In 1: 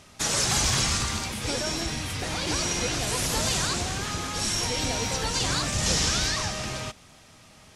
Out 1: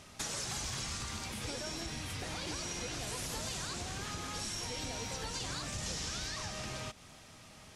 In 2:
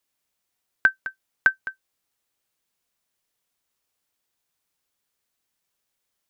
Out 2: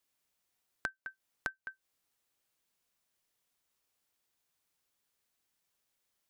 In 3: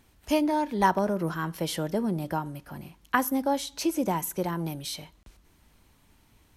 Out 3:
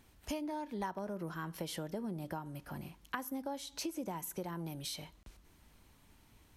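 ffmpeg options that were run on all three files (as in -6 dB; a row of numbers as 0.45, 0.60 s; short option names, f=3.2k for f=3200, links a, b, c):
-af "acompressor=threshold=-36dB:ratio=4,volume=-2.5dB"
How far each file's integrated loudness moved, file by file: -12.5, -20.0, -13.0 LU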